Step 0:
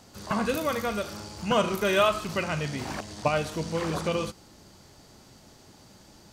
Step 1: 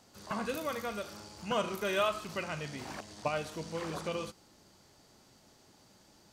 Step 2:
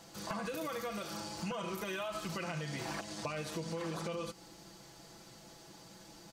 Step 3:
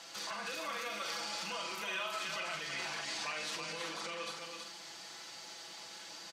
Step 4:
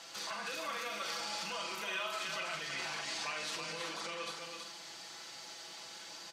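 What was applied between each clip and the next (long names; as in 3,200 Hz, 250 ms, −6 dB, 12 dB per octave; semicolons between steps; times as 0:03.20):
low-shelf EQ 160 Hz −6.5 dB; level −7.5 dB
comb filter 6 ms, depth 75%; brickwall limiter −28.5 dBFS, peak gain reduction 11 dB; downward compressor, threshold −41 dBFS, peak gain reduction 8 dB; level +5 dB
brickwall limiter −36 dBFS, peak gain reduction 9 dB; resonant band-pass 2,900 Hz, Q 0.67; on a send: multi-tap delay 43/324/372 ms −7/−5/−11 dB; on the sum: level +9.5 dB
convolution reverb, pre-delay 3 ms, DRR 12.5 dB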